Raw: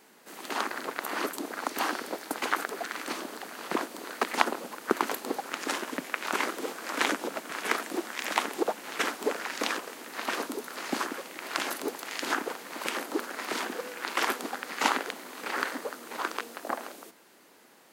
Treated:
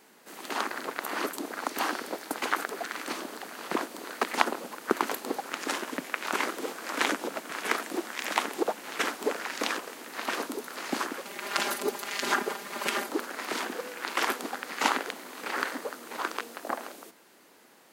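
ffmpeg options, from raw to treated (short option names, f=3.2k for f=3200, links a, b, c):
-filter_complex "[0:a]asettb=1/sr,asplit=3[a][b][c];[a]atrim=end=11.254[d];[b]atrim=start=11.25:end=13.09,asetpts=PTS-STARTPTS,afade=t=in:d=0.004:c=qsin,afade=t=out:st=1.836:d=0.004:c=qsin,aecho=1:1:5:0.95,atrim=end_sample=81144[e];[c]atrim=start=13.086[f];[d][e]acrossfade=d=0.004:c1=hsin:c2=qsin[g];[g][f]acrossfade=d=0.004:c1=qsin:c2=hsin"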